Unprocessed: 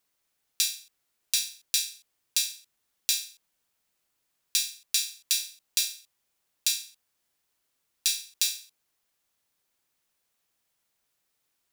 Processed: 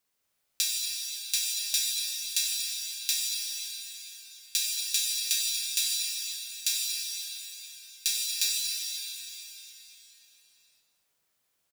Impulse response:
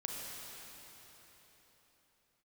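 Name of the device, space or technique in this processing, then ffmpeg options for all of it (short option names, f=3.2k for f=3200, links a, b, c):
cave: -filter_complex "[0:a]asplit=3[a][b][c];[a]afade=t=out:st=4.57:d=0.02[d];[b]highpass=f=1.4k:w=0.5412,highpass=f=1.4k:w=1.3066,afade=t=in:st=4.57:d=0.02,afade=t=out:st=5.24:d=0.02[e];[c]afade=t=in:st=5.24:d=0.02[f];[d][e][f]amix=inputs=3:normalize=0,aecho=1:1:238:0.316[g];[1:a]atrim=start_sample=2205[h];[g][h]afir=irnorm=-1:irlink=0"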